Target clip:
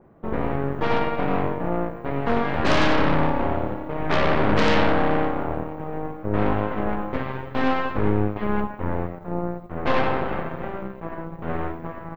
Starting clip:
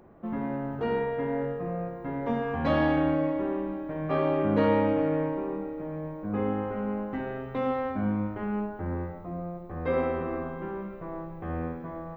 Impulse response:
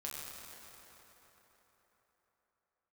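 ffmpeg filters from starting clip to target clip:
-filter_complex "[0:a]equalizer=f=150:w=2.3:g=4,asplit=2[s0][s1];[s1]asetrate=29433,aresample=44100,atempo=1.49831,volume=0.178[s2];[s0][s2]amix=inputs=2:normalize=0,aeval=exprs='0.266*(cos(1*acos(clip(val(0)/0.266,-1,1)))-cos(1*PI/2))+0.106*(cos(8*acos(clip(val(0)/0.266,-1,1)))-cos(8*PI/2))':c=same,adynamicequalizer=threshold=0.0126:dfrequency=3400:dqfactor=0.7:tfrequency=3400:tqfactor=0.7:attack=5:release=100:ratio=0.375:range=1.5:mode=boostabove:tftype=highshelf"

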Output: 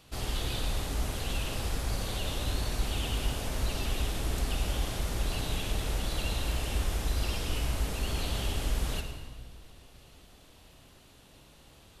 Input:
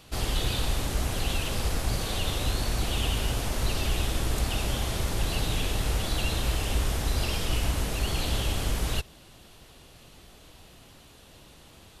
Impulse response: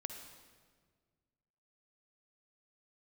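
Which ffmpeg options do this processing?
-filter_complex "[1:a]atrim=start_sample=2205[s0];[0:a][s0]afir=irnorm=-1:irlink=0,volume=0.75"

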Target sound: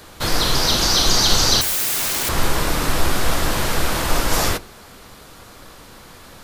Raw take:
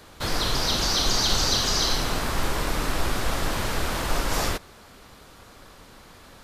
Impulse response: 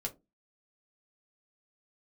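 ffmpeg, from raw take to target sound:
-filter_complex "[0:a]asettb=1/sr,asplit=3[s0][s1][s2];[s0]atrim=end=1.614[s3];[s1]atrim=start=1.61:end=2.29,asetpts=PTS-STARTPTS,afade=t=in:d=0.004:c=qsin,afade=t=out:st=0.676:d=0.004:c=qsin,aeval=exprs='(mod(17.8*val(0)+1,2)-1)/17.8':c=same[s4];[s2]atrim=start=2.286[s5];[s3][s4]acrossfade=d=0.004:c1=hsin:c2=qsin[s6];[s6][s5]acrossfade=d=0.004:c1=qsin:c2=hsin,crystalizer=i=0.5:c=0,asplit=2[s7][s8];[1:a]atrim=start_sample=2205,asetrate=31311,aresample=44100[s9];[s8][s9]afir=irnorm=-1:irlink=0,volume=0.282[s10];[s7][s10]amix=inputs=2:normalize=0,volume=1.5"

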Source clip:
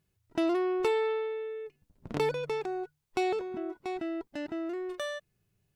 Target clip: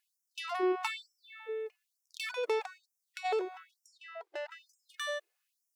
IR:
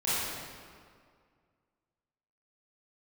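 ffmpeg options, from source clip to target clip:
-filter_complex "[0:a]asplit=3[s0][s1][s2];[s0]afade=t=out:st=2.77:d=0.02[s3];[s1]acompressor=threshold=0.0158:ratio=6,afade=t=in:st=2.77:d=0.02,afade=t=out:st=3.24:d=0.02[s4];[s2]afade=t=in:st=3.24:d=0.02[s5];[s3][s4][s5]amix=inputs=3:normalize=0,asettb=1/sr,asplit=3[s6][s7][s8];[s6]atrim=end=3.864[s9];[s7]atrim=start=3.86:end=4.51,asetpts=PTS-STARTPTS,afade=t=in:d=0.004:c=qsin,afade=t=out:st=0.646:d=0.004:c=qsin,aemphasis=mode=reproduction:type=cd[s10];[s8]atrim=start=4.506[s11];[s9][s10]acrossfade=d=0.004:c1=hsin:c2=qsin[s12];[s12][s11]acrossfade=d=0.004:c1=qsin:c2=hsin,afftfilt=real='re*gte(b*sr/1024,320*pow(5300/320,0.5+0.5*sin(2*PI*1.1*pts/sr)))':imag='im*gte(b*sr/1024,320*pow(5300/320,0.5+0.5*sin(2*PI*1.1*pts/sr)))':win_size=1024:overlap=0.75,volume=1.26"

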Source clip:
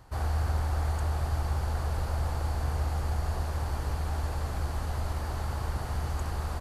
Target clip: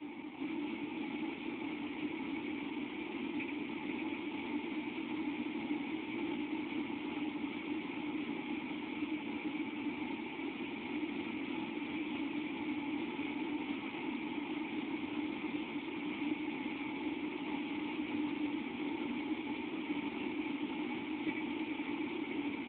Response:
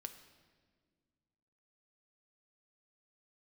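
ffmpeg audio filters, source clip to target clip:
-filter_complex "[0:a]equalizer=f=440:t=o:w=0.73:g=-6.5,acrossover=split=150|300|1200[s0][s1][s2][s3];[s0]acompressor=threshold=0.0126:ratio=4[s4];[s1]acompressor=threshold=0.00316:ratio=4[s5];[s2]acompressor=threshold=0.002:ratio=4[s6];[s3]acompressor=threshold=0.00355:ratio=4[s7];[s4][s5][s6][s7]amix=inputs=4:normalize=0,alimiter=level_in=5.31:limit=0.0631:level=0:latency=1:release=80,volume=0.188,acontrast=54,asetrate=12833,aresample=44100,crystalizer=i=8:c=0,acrusher=bits=7:mix=0:aa=0.000001,aeval=exprs='val(0)+0.000355*(sin(2*PI*50*n/s)+sin(2*PI*2*50*n/s)/2+sin(2*PI*3*50*n/s)/3+sin(2*PI*4*50*n/s)/4+sin(2*PI*5*50*n/s)/5)':c=same,asplit=3[s8][s9][s10];[s8]bandpass=f=300:t=q:w=8,volume=1[s11];[s9]bandpass=f=870:t=q:w=8,volume=0.501[s12];[s10]bandpass=f=2240:t=q:w=8,volume=0.355[s13];[s11][s12][s13]amix=inputs=3:normalize=0,flanger=delay=16.5:depth=5.5:speed=1.1,aecho=1:1:83|432|497|585|727:0.531|0.237|0.422|0.473|0.355,volume=7.94" -ar 8000 -c:a libspeex -b:a 11k

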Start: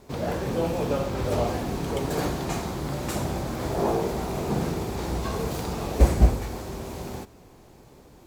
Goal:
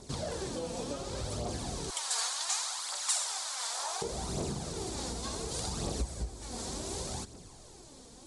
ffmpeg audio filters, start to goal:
-filter_complex "[0:a]asettb=1/sr,asplit=3[s0][s1][s2];[s0]atrim=end=1.904[s3];[s1]atrim=start=1.9:end=4.02,asetpts=PTS-STARTPTS,afade=t=in:d=0.004:c=qsin,afade=t=out:st=2.116:d=0.004:c=qsin,highpass=f=920:w=0.5412,highpass=f=920:w=1.3066[s4];[s2]atrim=start=4.016[s5];[s3][s4]acrossfade=d=0.004:c1=hsin:c2=qsin[s6];[s6][s5]acrossfade=d=0.004:c1=qsin:c2=hsin,acompressor=threshold=0.0282:ratio=10,aphaser=in_gain=1:out_gain=1:delay=4.5:decay=0.47:speed=0.68:type=triangular,aexciter=amount=4.9:drive=2.6:freq=3500,aresample=22050,aresample=44100,volume=0.631"

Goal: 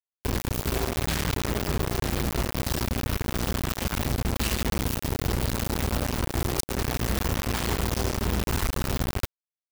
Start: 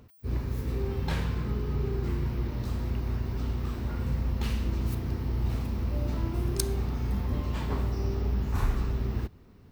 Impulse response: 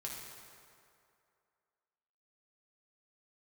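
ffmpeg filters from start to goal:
-af "highshelf=f=2600:g=7.5,acompressor=threshold=0.0316:ratio=3,acrusher=bits=4:mix=0:aa=0.000001,volume=1.58"

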